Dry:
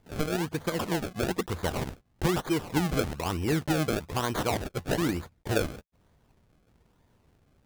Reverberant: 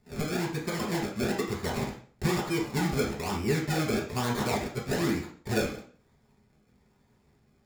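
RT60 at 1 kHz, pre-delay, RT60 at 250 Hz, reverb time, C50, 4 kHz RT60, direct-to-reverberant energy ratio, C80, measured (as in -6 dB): 0.45 s, 3 ms, 0.50 s, 0.45 s, 6.0 dB, 0.40 s, -4.0 dB, 11.5 dB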